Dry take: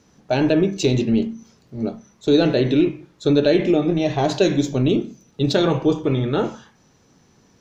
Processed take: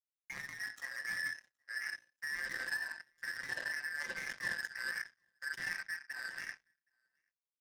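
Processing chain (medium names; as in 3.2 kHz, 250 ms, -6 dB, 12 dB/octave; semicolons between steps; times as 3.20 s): four frequency bands reordered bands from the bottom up 2143; Doppler pass-by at 2.15 s, 9 m/s, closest 2.6 m; gate with hold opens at -48 dBFS; graphic EQ 125/250/500/1000/2000/4000 Hz +7/+8/+11/+7/+4/-6 dB; reverse; compression 8:1, threshold -31 dBFS, peak gain reduction 23 dB; reverse; peak limiter -29.5 dBFS, peak gain reduction 9.5 dB; saturation -37.5 dBFS, distortion -12 dB; treble shelf 4.5 kHz +4.5 dB; on a send: delay 770 ms -12.5 dB; on the sum: simulated room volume 2400 m³, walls furnished, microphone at 0.85 m; power-law waveshaper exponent 3; trim +8 dB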